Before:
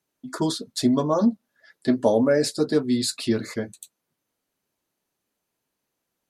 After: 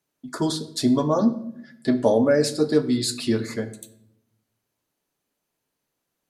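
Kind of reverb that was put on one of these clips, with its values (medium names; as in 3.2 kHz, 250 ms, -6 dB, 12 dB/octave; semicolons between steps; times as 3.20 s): simulated room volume 180 m³, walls mixed, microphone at 0.31 m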